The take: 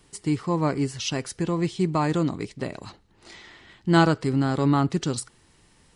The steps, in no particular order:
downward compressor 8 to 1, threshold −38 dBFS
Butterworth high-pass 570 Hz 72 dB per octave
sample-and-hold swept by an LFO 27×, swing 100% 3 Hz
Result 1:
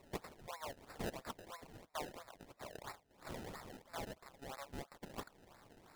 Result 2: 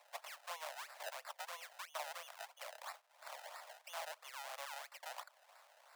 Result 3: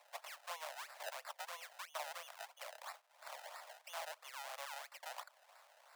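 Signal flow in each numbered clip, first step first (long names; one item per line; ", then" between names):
downward compressor, then Butterworth high-pass, then sample-and-hold swept by an LFO
sample-and-hold swept by an LFO, then downward compressor, then Butterworth high-pass
downward compressor, then sample-and-hold swept by an LFO, then Butterworth high-pass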